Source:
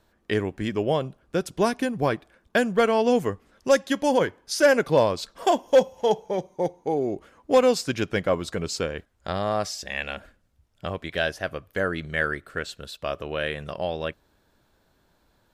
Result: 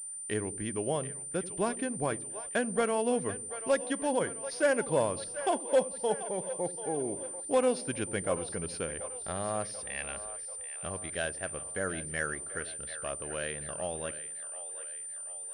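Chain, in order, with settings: split-band echo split 440 Hz, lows 83 ms, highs 0.737 s, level -13 dB; pulse-width modulation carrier 9100 Hz; gain -8.5 dB

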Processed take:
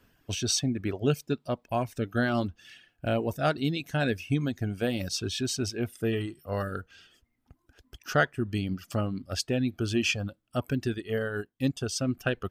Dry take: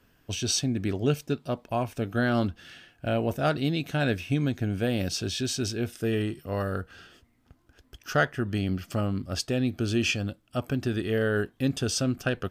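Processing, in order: reverb removal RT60 1.2 s; 10.94–12.09 upward expander 1.5:1, over -45 dBFS

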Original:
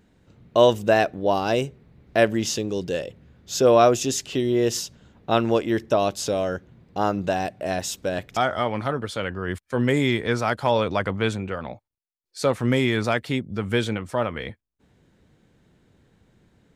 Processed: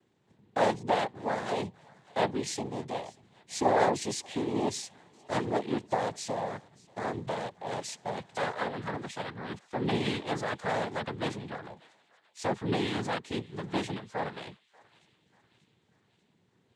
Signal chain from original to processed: noise vocoder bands 6; thinning echo 0.588 s, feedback 60%, high-pass 1100 Hz, level -22 dB; gain -9 dB

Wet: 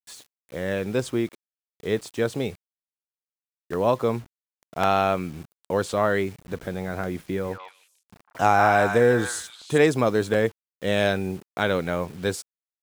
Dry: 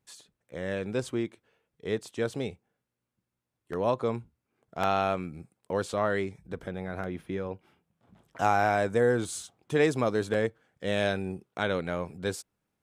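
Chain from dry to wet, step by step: bit-crush 9-bit; 7.23–9.78 delay with a stepping band-pass 0.151 s, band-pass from 1200 Hz, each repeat 1.4 oct, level -1 dB; gain +5.5 dB

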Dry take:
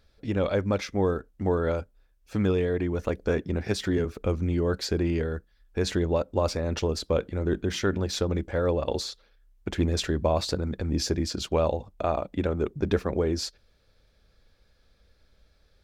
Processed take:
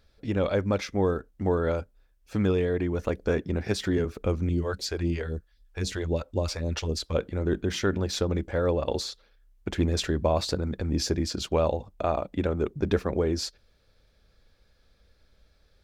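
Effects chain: 4.49–7.15 phaser stages 2, 3.8 Hz, lowest notch 150–1700 Hz

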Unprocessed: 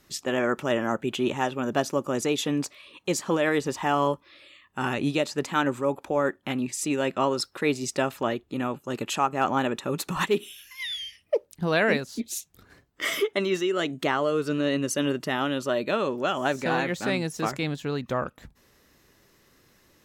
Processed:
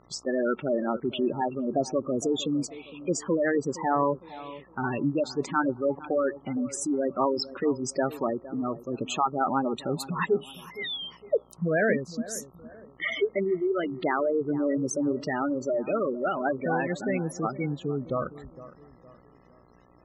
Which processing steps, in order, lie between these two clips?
spectral gate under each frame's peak -10 dB strong; buzz 60 Hz, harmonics 22, -60 dBFS -2 dB/oct; analogue delay 0.461 s, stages 4096, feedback 40%, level -16.5 dB

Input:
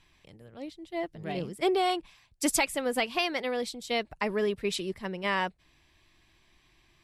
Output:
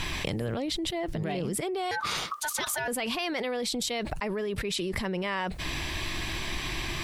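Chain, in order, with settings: 1.91–2.88 ring modulator 1200 Hz; fast leveller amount 100%; gain -8.5 dB

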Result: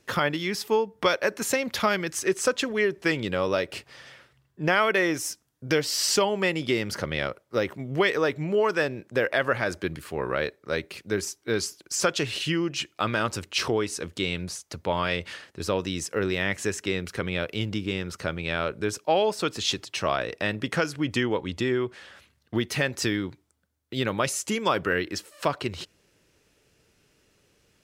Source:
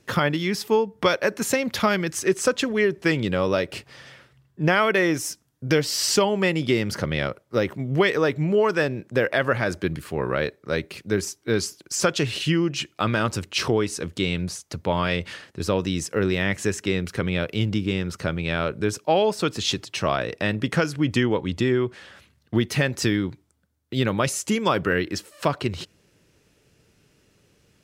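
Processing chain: bell 140 Hz -6 dB 2.2 oct; gain -1.5 dB

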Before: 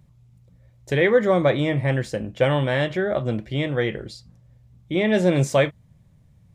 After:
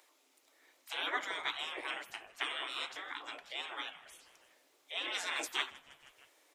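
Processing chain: spectral gate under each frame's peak -25 dB weak; Chebyshev high-pass 260 Hz, order 10; on a send: frequency-shifting echo 0.158 s, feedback 57%, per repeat -120 Hz, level -21 dB; on the sum: mismatched tape noise reduction encoder only

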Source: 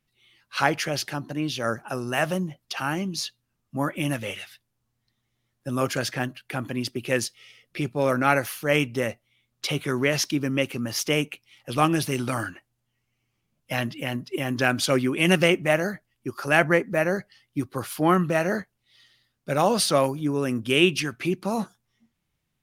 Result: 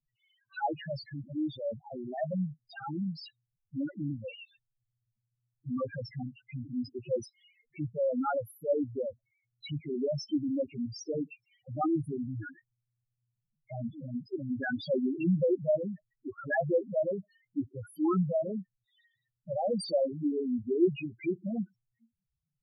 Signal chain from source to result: loudest bins only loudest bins 2; gain -2.5 dB

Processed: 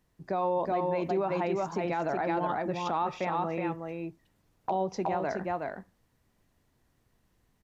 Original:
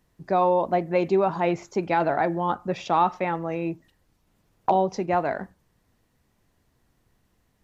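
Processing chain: echo 0.369 s -4.5 dB; limiter -16 dBFS, peak gain reduction 8 dB; gain -4.5 dB

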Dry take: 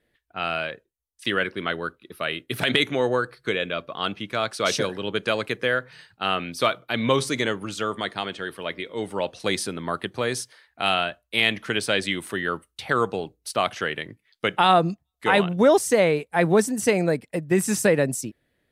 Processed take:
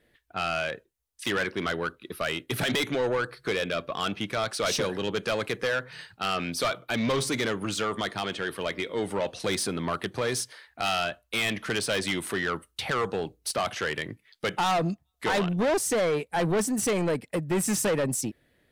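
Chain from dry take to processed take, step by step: in parallel at +0.5 dB: compressor, threshold -30 dBFS, peak gain reduction 16.5 dB; on the sum: soft clip -20 dBFS, distortion -7 dB; gain -1.5 dB

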